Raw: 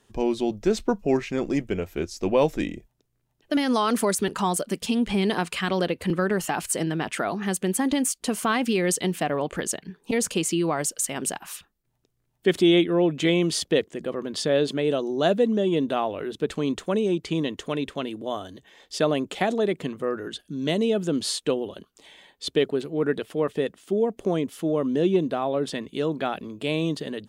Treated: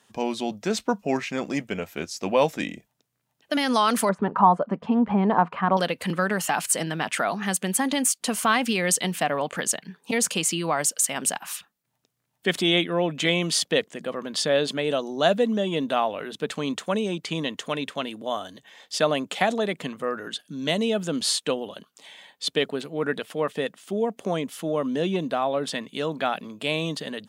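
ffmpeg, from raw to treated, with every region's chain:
-filter_complex "[0:a]asettb=1/sr,asplit=3[a][b][c];[a]atrim=end=4.094[d];[b]atrim=start=4.09:end=5.77,asetpts=PTS-STARTPTS,afade=t=in:d=0.004:c=qsin,afade=t=out:st=1.676:d=0.004:c=qsin,lowpass=f=1k:t=q:w=2.2,lowshelf=f=380:g=4.5[e];[c]atrim=start=5.766[f];[d][e]acrossfade=d=0.004:c1=hsin:c2=qsin[g];[g][f]acrossfade=d=0.004:c1=qsin:c2=hsin,highpass=200,equalizer=f=360:t=o:w=0.79:g=-11,volume=4dB"

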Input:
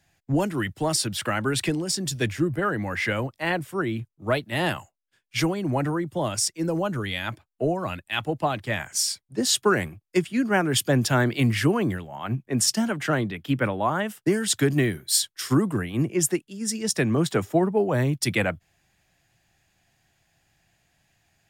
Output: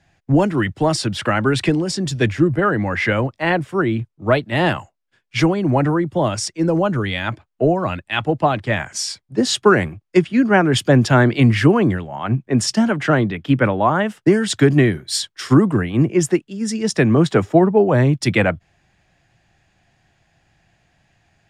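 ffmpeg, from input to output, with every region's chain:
-filter_complex "[0:a]asettb=1/sr,asplit=3[a][b][c];[a]atrim=end=10.214[d];[b]atrim=start=10.21:end=10.72,asetpts=PTS-STARTPTS,afade=t=in:d=0.004:c=qsin,afade=t=out:st=0.506:d=0.004:c=qsin,acrossover=split=8100[e][f];[f]acompressor=threshold=-58dB:ratio=4:attack=1:release=60[g];[e][g]amix=inputs=2:normalize=0,bandreject=f=7.5k:w=14[h];[c]atrim=start=10.716[i];[d][h]acrossfade=d=0.004:c1=hsin:c2=qsin[j];[j][i]acrossfade=d=0.004:c1=qsin:c2=hsin,lowpass=7.6k,highshelf=f=3.2k:g=-8.5,volume=8.5dB"

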